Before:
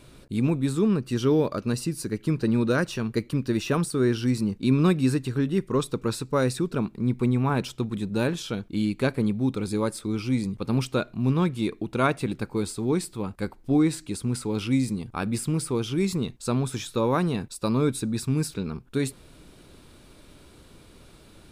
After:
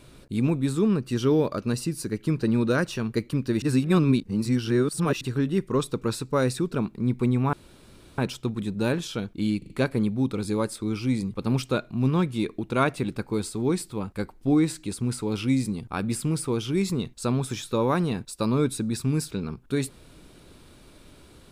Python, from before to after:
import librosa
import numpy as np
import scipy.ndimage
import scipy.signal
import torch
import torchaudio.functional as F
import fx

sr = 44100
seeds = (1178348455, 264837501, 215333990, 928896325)

y = fx.edit(x, sr, fx.reverse_span(start_s=3.62, length_s=1.59),
    fx.insert_room_tone(at_s=7.53, length_s=0.65),
    fx.stutter(start_s=8.93, slice_s=0.04, count=4), tone=tone)